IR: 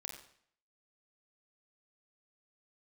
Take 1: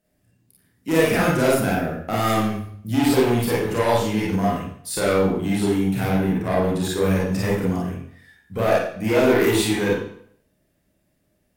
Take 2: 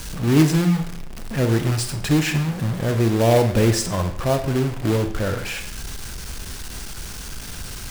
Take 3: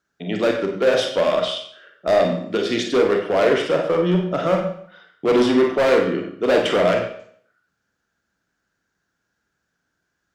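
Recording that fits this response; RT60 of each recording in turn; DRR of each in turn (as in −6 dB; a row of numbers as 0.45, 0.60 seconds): 3; 0.60, 0.60, 0.60 seconds; −6.5, 7.0, 1.5 decibels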